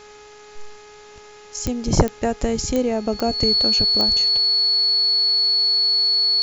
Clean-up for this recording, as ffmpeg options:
ffmpeg -i in.wav -af "adeclick=threshold=4,bandreject=frequency=418.8:width_type=h:width=4,bandreject=frequency=837.6:width_type=h:width=4,bandreject=frequency=1256.4:width_type=h:width=4,bandreject=frequency=1675.2:width_type=h:width=4,bandreject=frequency=2094:width_type=h:width=4,bandreject=frequency=2512.8:width_type=h:width=4,bandreject=frequency=4400:width=30,agate=range=-21dB:threshold=-36dB" out.wav

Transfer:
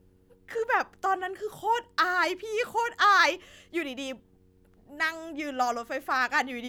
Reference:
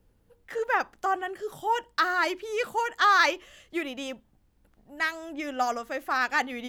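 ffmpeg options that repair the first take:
ffmpeg -i in.wav -af "bandreject=frequency=92.5:width_type=h:width=4,bandreject=frequency=185:width_type=h:width=4,bandreject=frequency=277.5:width_type=h:width=4,bandreject=frequency=370:width_type=h:width=4,bandreject=frequency=462.5:width_type=h:width=4" out.wav

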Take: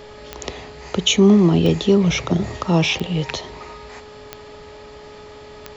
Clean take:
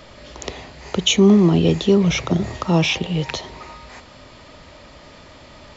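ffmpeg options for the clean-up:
ffmpeg -i in.wav -af "adeclick=threshold=4,bandreject=frequency=421.8:width_type=h:width=4,bandreject=frequency=843.6:width_type=h:width=4,bandreject=frequency=1265.4:width_type=h:width=4,bandreject=frequency=1687.2:width_type=h:width=4" out.wav

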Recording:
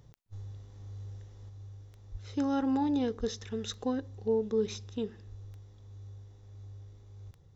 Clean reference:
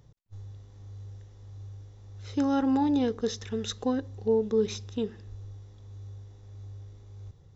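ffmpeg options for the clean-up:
ffmpeg -i in.wav -filter_complex "[0:a]adeclick=threshold=4,asplit=3[link_01][link_02][link_03];[link_01]afade=type=out:start_time=2.11:duration=0.02[link_04];[link_02]highpass=frequency=140:width=0.5412,highpass=frequency=140:width=1.3066,afade=type=in:start_time=2.11:duration=0.02,afade=type=out:start_time=2.23:duration=0.02[link_05];[link_03]afade=type=in:start_time=2.23:duration=0.02[link_06];[link_04][link_05][link_06]amix=inputs=3:normalize=0,asplit=3[link_07][link_08][link_09];[link_07]afade=type=out:start_time=3.19:duration=0.02[link_10];[link_08]highpass=frequency=140:width=0.5412,highpass=frequency=140:width=1.3066,afade=type=in:start_time=3.19:duration=0.02,afade=type=out:start_time=3.31:duration=0.02[link_11];[link_09]afade=type=in:start_time=3.31:duration=0.02[link_12];[link_10][link_11][link_12]amix=inputs=3:normalize=0,asetnsamples=nb_out_samples=441:pad=0,asendcmd='1.49 volume volume 4dB',volume=0dB" out.wav

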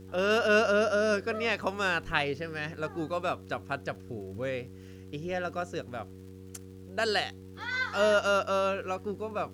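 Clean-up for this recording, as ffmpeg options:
ffmpeg -i in.wav -af "adeclick=threshold=4,bandreject=frequency=94.2:width_type=h:width=4,bandreject=frequency=188.4:width_type=h:width=4,bandreject=frequency=282.6:width_type=h:width=4,bandreject=frequency=376.8:width_type=h:width=4,bandreject=frequency=471:width_type=h:width=4,agate=range=-21dB:threshold=-39dB" out.wav

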